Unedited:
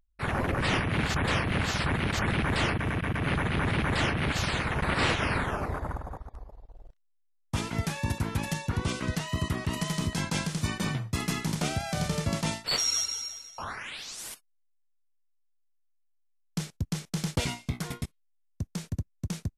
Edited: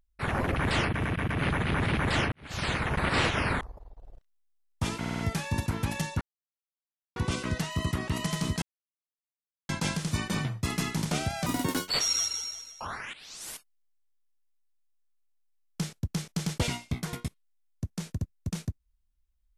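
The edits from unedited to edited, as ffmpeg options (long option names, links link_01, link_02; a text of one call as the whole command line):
ffmpeg -i in.wav -filter_complex "[0:a]asplit=13[link_01][link_02][link_03][link_04][link_05][link_06][link_07][link_08][link_09][link_10][link_11][link_12][link_13];[link_01]atrim=end=0.562[link_14];[link_02]atrim=start=2.408:end=4.17,asetpts=PTS-STARTPTS,afade=type=out:start_time=1.758:duration=0.004:curve=hsin[link_15];[link_03]atrim=start=4.17:end=5.462,asetpts=PTS-STARTPTS,afade=type=in:duration=0.34:curve=qua[link_16];[link_04]atrim=start=6.328:end=7.762[link_17];[link_05]atrim=start=7.708:end=7.762[link_18];[link_06]atrim=start=7.708:end=7.762[link_19];[link_07]atrim=start=7.708:end=7.762[link_20];[link_08]atrim=start=7.708:end=8.73,asetpts=PTS-STARTPTS,afade=type=out:start_time=1.018:duration=0.004:curve=hsin,apad=pad_dur=0.95[link_21];[link_09]atrim=start=8.73:end=10.19,asetpts=PTS-STARTPTS,afade=type=in:duration=0.004:curve=hsin,afade=type=out:start_time=1.456:duration=0.004:curve=hsin,apad=pad_dur=1.07[link_22];[link_10]atrim=start=10.19:end=11.964,asetpts=PTS-STARTPTS,afade=type=in:duration=0.004:curve=hsin[link_23];[link_11]atrim=start=11.96:end=12.67,asetpts=PTS-STARTPTS,asetrate=71883,aresample=44100,atrim=end_sample=19209,asetpts=PTS-STARTPTS[link_24];[link_12]atrim=start=12.666:end=13.91,asetpts=PTS-STARTPTS,afade=type=out:start_time=1.24:duration=0.004:curve=hsin:silence=0.177828[link_25];[link_13]atrim=start=13.91,asetpts=PTS-STARTPTS,afade=type=in:duration=0.35:silence=0.177828[link_26];[link_15][link_16]concat=n=2:v=0:a=1[link_27];[link_14][link_27]acrossfade=duration=0.004:curve1=hsin:curve2=hsin[link_28];[link_28][link_17]acrossfade=duration=0.004:curve1=hsin:curve2=hsin[link_29];[link_29][link_18]acrossfade=duration=0.004:curve1=hsin:curve2=hsin[link_30];[link_30][link_19]acrossfade=duration=0.004:curve1=hsin:curve2=hsin[link_31];[link_31][link_20]acrossfade=duration=0.004:curve1=hsin:curve2=hsin[link_32];[link_21][link_22][link_23]concat=n=3:v=0:a=1[link_33];[link_32][link_33]acrossfade=duration=0.004:curve1=hsin:curve2=hsin[link_34];[link_34][link_24]acrossfade=duration=0.004:curve1=hsin:curve2=hsin[link_35];[link_25][link_26]concat=n=2:v=0:a=1[link_36];[link_35][link_36]acrossfade=duration=0.004:curve1=hsin:curve2=hsin" out.wav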